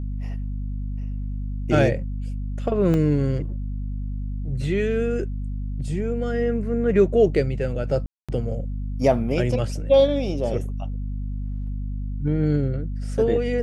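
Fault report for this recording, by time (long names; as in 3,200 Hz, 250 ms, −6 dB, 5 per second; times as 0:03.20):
mains hum 50 Hz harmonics 5 −28 dBFS
0:02.94: drop-out 2.1 ms
0:08.06–0:08.29: drop-out 226 ms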